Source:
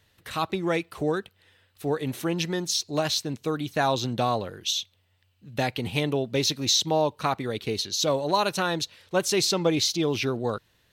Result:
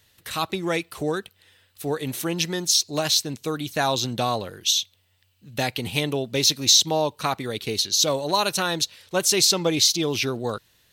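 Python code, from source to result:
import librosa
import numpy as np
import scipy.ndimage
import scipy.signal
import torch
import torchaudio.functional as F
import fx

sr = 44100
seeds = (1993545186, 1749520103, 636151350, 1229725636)

y = fx.high_shelf(x, sr, hz=3600.0, db=10.5)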